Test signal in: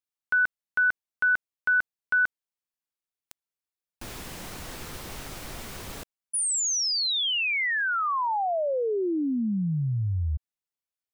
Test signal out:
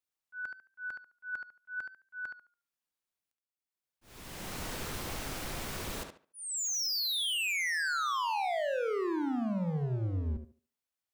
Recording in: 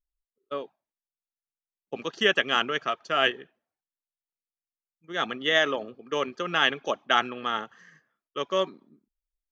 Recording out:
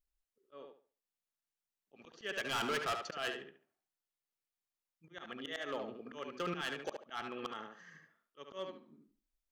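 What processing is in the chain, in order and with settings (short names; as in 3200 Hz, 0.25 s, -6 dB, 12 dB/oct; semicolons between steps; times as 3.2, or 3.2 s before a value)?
auto swell 0.611 s; overloaded stage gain 32 dB; tape echo 72 ms, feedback 28%, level -3.5 dB, low-pass 3800 Hz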